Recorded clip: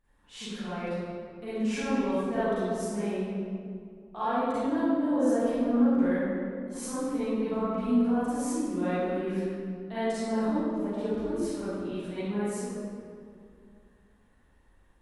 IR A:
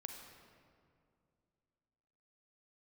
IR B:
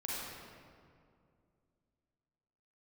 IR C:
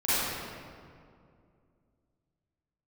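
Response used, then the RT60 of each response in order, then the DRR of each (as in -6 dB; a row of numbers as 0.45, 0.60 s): C; 2.4, 2.3, 2.3 s; 3.5, -6.5, -14.5 dB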